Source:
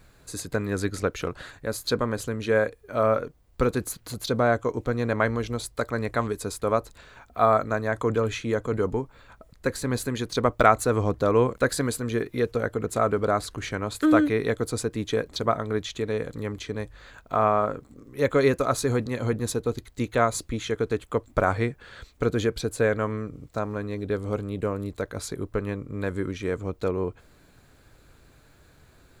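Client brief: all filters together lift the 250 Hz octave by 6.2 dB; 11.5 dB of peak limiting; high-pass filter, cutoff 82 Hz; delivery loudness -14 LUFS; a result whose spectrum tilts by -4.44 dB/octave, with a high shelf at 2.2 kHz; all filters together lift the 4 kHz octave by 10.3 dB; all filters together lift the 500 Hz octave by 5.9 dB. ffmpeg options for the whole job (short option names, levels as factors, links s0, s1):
-af "highpass=82,equalizer=f=250:t=o:g=6,equalizer=f=500:t=o:g=5,highshelf=f=2200:g=6,equalizer=f=4000:t=o:g=6.5,volume=2.82,alimiter=limit=0.944:level=0:latency=1"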